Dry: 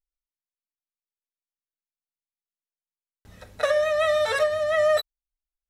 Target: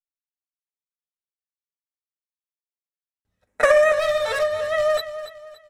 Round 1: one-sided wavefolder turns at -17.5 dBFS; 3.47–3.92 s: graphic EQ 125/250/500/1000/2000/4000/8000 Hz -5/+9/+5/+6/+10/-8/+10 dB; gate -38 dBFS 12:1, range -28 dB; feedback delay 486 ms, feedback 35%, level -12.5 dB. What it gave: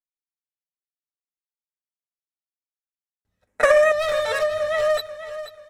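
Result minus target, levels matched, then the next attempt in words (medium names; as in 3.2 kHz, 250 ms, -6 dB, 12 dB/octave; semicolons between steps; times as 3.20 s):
echo 201 ms late
one-sided wavefolder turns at -17.5 dBFS; 3.47–3.92 s: graphic EQ 125/250/500/1000/2000/4000/8000 Hz -5/+9/+5/+6/+10/-8/+10 dB; gate -38 dBFS 12:1, range -28 dB; feedback delay 285 ms, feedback 35%, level -12.5 dB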